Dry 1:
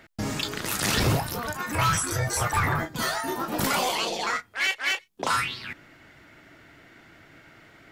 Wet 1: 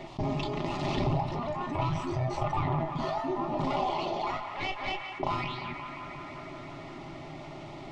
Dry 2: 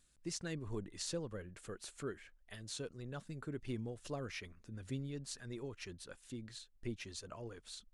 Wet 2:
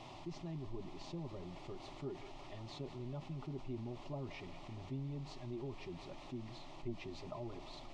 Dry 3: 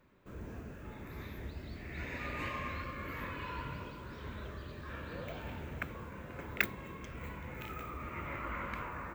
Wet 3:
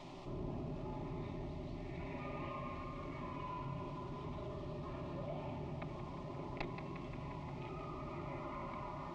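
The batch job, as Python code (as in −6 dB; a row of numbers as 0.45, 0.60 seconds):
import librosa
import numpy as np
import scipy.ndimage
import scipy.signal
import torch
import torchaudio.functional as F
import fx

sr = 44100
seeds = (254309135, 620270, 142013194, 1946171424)

p1 = fx.tracing_dist(x, sr, depth_ms=0.033)
p2 = p1 + 0.56 * np.pad(p1, (int(4.9 * sr / 1000.0), 0))[:len(p1)]
p3 = fx.rider(p2, sr, range_db=10, speed_s=2.0)
p4 = fx.quant_dither(p3, sr, seeds[0], bits=8, dither='triangular')
p5 = fx.cheby_harmonics(p4, sr, harmonics=(4,), levels_db=(-7,), full_scale_db=-1.5)
p6 = fx.fixed_phaser(p5, sr, hz=310.0, stages=8)
p7 = p6 + fx.echo_banded(p6, sr, ms=176, feedback_pct=83, hz=1600.0, wet_db=-13.0, dry=0)
p8 = np.repeat(scipy.signal.resample_poly(p7, 1, 2), 2)[:len(p7)]
p9 = fx.spacing_loss(p8, sr, db_at_10k=43)
p10 = fx.env_flatten(p9, sr, amount_pct=50)
y = F.gain(torch.from_numpy(p10), -2.0).numpy()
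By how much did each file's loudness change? −6.5, −1.5, −3.5 LU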